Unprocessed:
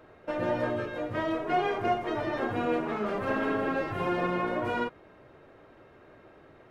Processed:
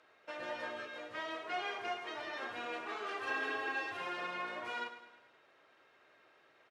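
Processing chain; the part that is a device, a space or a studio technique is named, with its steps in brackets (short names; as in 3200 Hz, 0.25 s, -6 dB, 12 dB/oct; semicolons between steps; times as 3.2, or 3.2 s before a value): 2.86–3.97 comb 2.6 ms, depth 91%; piezo pickup straight into a mixer (LPF 5900 Hz 12 dB/oct; differentiator); high shelf 4000 Hz -5.5 dB; feedback echo 0.105 s, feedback 51%, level -11.5 dB; gain +7.5 dB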